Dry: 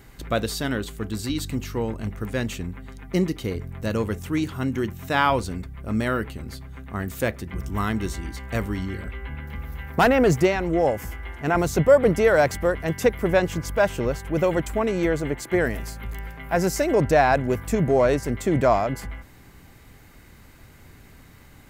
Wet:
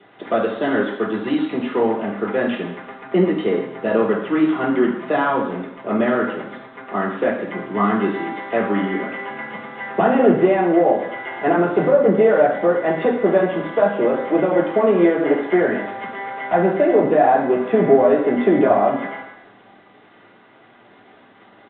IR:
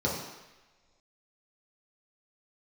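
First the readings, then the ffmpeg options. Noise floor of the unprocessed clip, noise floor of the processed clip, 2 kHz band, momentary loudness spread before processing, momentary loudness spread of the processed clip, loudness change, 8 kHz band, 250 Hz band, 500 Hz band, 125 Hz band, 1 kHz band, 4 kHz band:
−49 dBFS, −49 dBFS, +2.5 dB, 16 LU, 13 LU, +5.0 dB, below −40 dB, +6.5 dB, +6.0 dB, −4.0 dB, +5.5 dB, can't be measured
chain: -filter_complex "[0:a]highpass=frequency=190:width=0.5412,highpass=frequency=190:width=1.3066,lowshelf=frequency=330:gain=-4,acrossover=split=280[link_01][link_02];[link_02]acompressor=threshold=-29dB:ratio=12[link_03];[link_01][link_03]amix=inputs=2:normalize=0,asplit=2[link_04][link_05];[link_05]highpass=frequency=720:poles=1,volume=24dB,asoftclip=type=tanh:threshold=-2.5dB[link_06];[link_04][link_06]amix=inputs=2:normalize=0,lowpass=frequency=2000:poles=1,volume=-6dB,aresample=8000,aeval=exprs='sgn(val(0))*max(abs(val(0))-0.00794,0)':channel_layout=same,aresample=44100[link_07];[1:a]atrim=start_sample=2205,asetrate=61740,aresample=44100[link_08];[link_07][link_08]afir=irnorm=-1:irlink=0,volume=-9dB"

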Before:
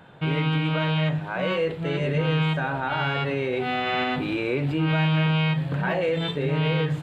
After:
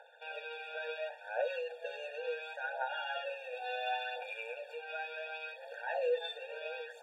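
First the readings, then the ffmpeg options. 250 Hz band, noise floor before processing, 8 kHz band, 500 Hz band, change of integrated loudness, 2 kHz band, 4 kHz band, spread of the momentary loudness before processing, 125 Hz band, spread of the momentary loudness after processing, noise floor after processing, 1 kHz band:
below −40 dB, −34 dBFS, can't be measured, −11.0 dB, −14.5 dB, −11.5 dB, −14.5 dB, 4 LU, below −40 dB, 7 LU, −53 dBFS, −11.5 dB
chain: -af "acompressor=threshold=-25dB:ratio=6,aphaser=in_gain=1:out_gain=1:delay=2.9:decay=0.53:speed=0.71:type=triangular,afftfilt=real='re*eq(mod(floor(b*sr/1024/470),2),1)':imag='im*eq(mod(floor(b*sr/1024/470),2),1)':win_size=1024:overlap=0.75,volume=-6.5dB"

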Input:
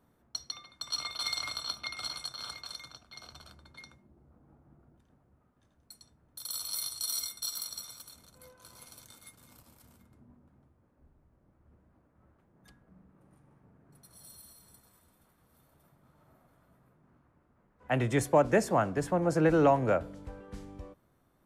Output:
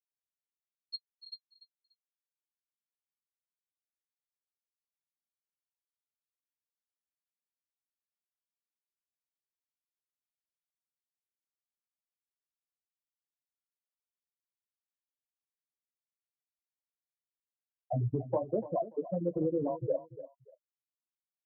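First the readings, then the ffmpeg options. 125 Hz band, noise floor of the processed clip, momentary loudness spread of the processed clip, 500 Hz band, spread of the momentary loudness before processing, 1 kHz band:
−4.0 dB, below −85 dBFS, 17 LU, −6.0 dB, 22 LU, −11.0 dB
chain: -af "bandreject=frequency=2300:width=12,afftfilt=real='re*gte(hypot(re,im),0.282)':imag='im*gte(hypot(re,im),0.282)':win_size=1024:overlap=0.75,highpass=54,highshelf=frequency=2200:gain=-6.5,acompressor=threshold=-32dB:ratio=6,flanger=delay=7.5:depth=10:regen=-24:speed=0.2:shape=sinusoidal,aecho=1:1:291|582:0.188|0.0414,volume=7.5dB"

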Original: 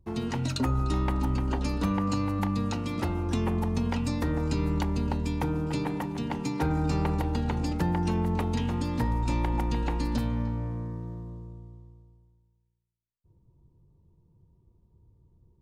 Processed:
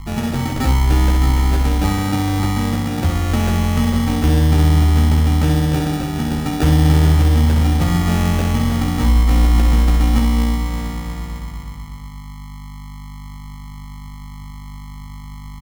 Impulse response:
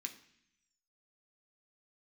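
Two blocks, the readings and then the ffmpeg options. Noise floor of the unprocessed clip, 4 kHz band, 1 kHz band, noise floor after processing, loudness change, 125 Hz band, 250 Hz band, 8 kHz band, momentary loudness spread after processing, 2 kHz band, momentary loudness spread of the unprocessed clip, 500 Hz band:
−67 dBFS, +13.5 dB, +9.0 dB, −33 dBFS, +12.5 dB, +14.0 dB, +10.0 dB, +15.0 dB, 22 LU, +12.5 dB, 5 LU, +7.5 dB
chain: -filter_complex "[0:a]aeval=exprs='val(0)+0.00891*(sin(2*PI*50*n/s)+sin(2*PI*2*50*n/s)/2+sin(2*PI*3*50*n/s)/3+sin(2*PI*4*50*n/s)/4+sin(2*PI*5*50*n/s)/5)':channel_layout=same,lowshelf=frequency=110:gain=10,acrusher=samples=42:mix=1:aa=0.000001,asplit=2[link_01][link_02];[link_02]aecho=0:1:13|65:0.631|0.501[link_03];[link_01][link_03]amix=inputs=2:normalize=0,volume=5dB"

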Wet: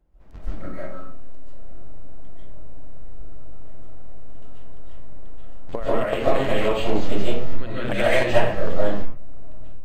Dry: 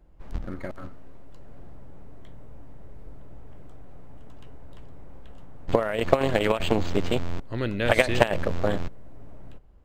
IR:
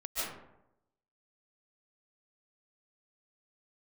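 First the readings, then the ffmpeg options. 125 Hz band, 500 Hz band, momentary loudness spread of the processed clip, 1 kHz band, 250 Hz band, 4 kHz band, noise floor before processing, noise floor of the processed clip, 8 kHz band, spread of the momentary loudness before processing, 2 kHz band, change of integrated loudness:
0.0 dB, +2.5 dB, 17 LU, +1.5 dB, +0.5 dB, +0.5 dB, −39 dBFS, −28 dBFS, can't be measured, 16 LU, +0.5 dB, +1.5 dB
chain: -filter_complex "[1:a]atrim=start_sample=2205,afade=type=out:start_time=0.35:duration=0.01,atrim=end_sample=15876[link_01];[0:a][link_01]afir=irnorm=-1:irlink=0,volume=-3.5dB"

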